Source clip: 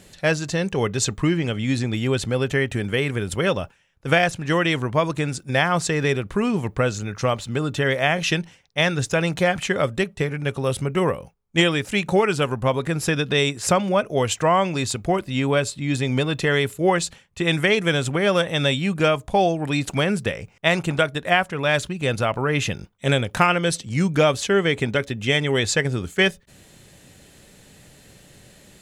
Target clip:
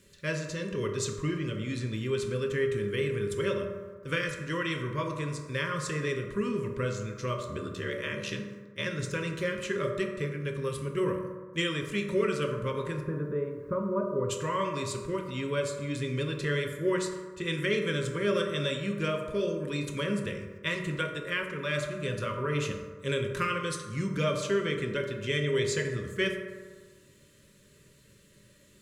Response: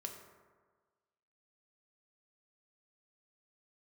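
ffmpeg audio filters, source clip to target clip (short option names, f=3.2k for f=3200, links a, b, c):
-filter_complex "[0:a]asettb=1/sr,asplit=3[a][b][c];[a]atrim=end=7.424[d];[b]atrim=start=7.42:end=8.86,asetpts=PTS-STARTPTS,afade=t=in:d=0.004:c=qsin,afade=t=out:st=1.436:d=0.004:c=qsin,aeval=exprs='val(0)*sin(2*PI*37*n/s)':c=same[e];[c]atrim=start=8.856[f];[d][e]acrossfade=d=0.004:c1=hsin:c2=qsin[g];[g][f]acrossfade=d=0.004:c1=qsin:c2=hsin,asplit=3[h][i][j];[h]afade=t=out:st=12.99:d=0.02[k];[i]lowpass=f=1.2k:w=0.5412,lowpass=f=1.2k:w=1.3066,afade=t=in:st=12.99:d=0.02,afade=t=out:st=14.29:d=0.02[l];[j]afade=t=in:st=14.29:d=0.02[m];[k][l][m]amix=inputs=3:normalize=0,acrusher=bits=10:mix=0:aa=0.000001,asuperstop=centerf=760:order=20:qfactor=2.4[n];[1:a]atrim=start_sample=2205[o];[n][o]afir=irnorm=-1:irlink=0,volume=-7.5dB"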